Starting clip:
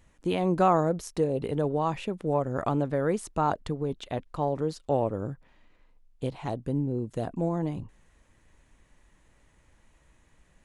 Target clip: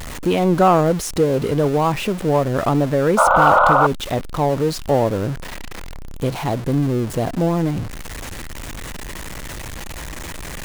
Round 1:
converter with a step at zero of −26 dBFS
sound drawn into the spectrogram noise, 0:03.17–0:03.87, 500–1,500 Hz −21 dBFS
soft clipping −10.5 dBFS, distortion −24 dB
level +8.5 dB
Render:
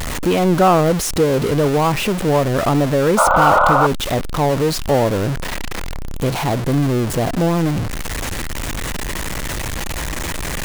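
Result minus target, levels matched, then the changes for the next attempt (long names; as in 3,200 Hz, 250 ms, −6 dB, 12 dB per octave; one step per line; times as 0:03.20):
converter with a step at zero: distortion +6 dB
change: converter with a step at zero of −33.5 dBFS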